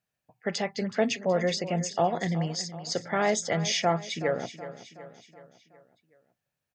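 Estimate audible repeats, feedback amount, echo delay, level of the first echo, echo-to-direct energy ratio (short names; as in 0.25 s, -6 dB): 4, 52%, 0.373 s, -14.0 dB, -12.5 dB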